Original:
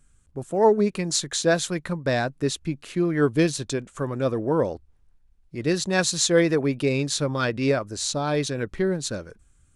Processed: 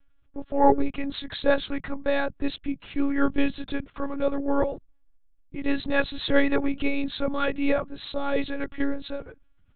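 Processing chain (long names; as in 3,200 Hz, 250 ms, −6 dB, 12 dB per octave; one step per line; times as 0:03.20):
one-pitch LPC vocoder at 8 kHz 280 Hz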